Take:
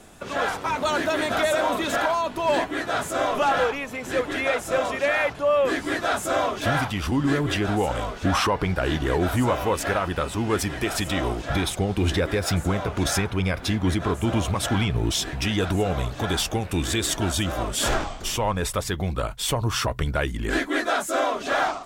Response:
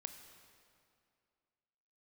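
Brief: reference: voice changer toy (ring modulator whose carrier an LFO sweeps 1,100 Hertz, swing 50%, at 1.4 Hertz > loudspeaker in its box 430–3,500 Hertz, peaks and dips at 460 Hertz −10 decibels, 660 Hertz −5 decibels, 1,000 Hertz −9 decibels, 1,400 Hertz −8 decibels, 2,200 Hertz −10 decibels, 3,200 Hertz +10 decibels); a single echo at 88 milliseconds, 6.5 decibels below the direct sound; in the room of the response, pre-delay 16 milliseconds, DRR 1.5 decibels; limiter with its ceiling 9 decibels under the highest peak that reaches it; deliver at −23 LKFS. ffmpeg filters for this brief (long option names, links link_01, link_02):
-filter_complex "[0:a]alimiter=limit=-21dB:level=0:latency=1,aecho=1:1:88:0.473,asplit=2[link_01][link_02];[1:a]atrim=start_sample=2205,adelay=16[link_03];[link_02][link_03]afir=irnorm=-1:irlink=0,volume=2.5dB[link_04];[link_01][link_04]amix=inputs=2:normalize=0,aeval=exprs='val(0)*sin(2*PI*1100*n/s+1100*0.5/1.4*sin(2*PI*1.4*n/s))':channel_layout=same,highpass=430,equalizer=frequency=460:width_type=q:width=4:gain=-10,equalizer=frequency=660:width_type=q:width=4:gain=-5,equalizer=frequency=1000:width_type=q:width=4:gain=-9,equalizer=frequency=1400:width_type=q:width=4:gain=-8,equalizer=frequency=2200:width_type=q:width=4:gain=-10,equalizer=frequency=3200:width_type=q:width=4:gain=10,lowpass=frequency=3500:width=0.5412,lowpass=frequency=3500:width=1.3066,volume=10dB"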